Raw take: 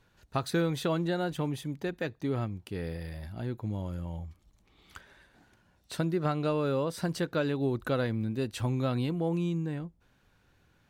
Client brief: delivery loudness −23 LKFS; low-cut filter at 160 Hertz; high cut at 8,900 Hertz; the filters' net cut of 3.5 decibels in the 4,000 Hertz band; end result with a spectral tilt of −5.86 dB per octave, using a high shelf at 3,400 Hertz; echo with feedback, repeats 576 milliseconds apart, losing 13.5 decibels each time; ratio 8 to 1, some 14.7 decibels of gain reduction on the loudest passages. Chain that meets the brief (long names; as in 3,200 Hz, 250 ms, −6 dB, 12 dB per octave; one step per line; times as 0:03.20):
high-pass filter 160 Hz
low-pass filter 8,900 Hz
high-shelf EQ 3,400 Hz +4.5 dB
parametric band 4,000 Hz −7 dB
downward compressor 8 to 1, threshold −40 dBFS
repeating echo 576 ms, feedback 21%, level −13.5 dB
level +22 dB